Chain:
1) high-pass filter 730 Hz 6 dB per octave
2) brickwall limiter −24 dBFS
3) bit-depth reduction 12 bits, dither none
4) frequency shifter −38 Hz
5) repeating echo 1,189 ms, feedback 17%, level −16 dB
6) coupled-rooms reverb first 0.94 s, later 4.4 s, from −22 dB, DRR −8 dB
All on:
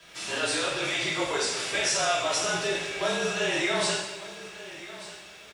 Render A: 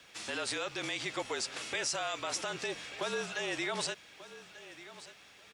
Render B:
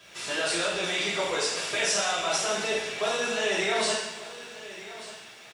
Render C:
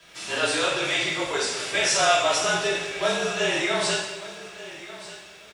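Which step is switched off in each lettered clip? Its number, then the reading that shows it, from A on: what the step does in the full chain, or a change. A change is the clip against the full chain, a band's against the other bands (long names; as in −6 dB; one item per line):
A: 6, change in integrated loudness −9.0 LU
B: 4, 125 Hz band −5.0 dB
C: 2, change in crest factor +3.0 dB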